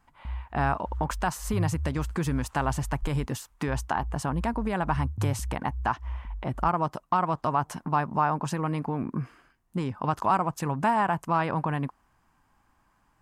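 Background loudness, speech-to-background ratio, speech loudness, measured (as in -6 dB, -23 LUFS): -37.5 LUFS, 8.5 dB, -29.0 LUFS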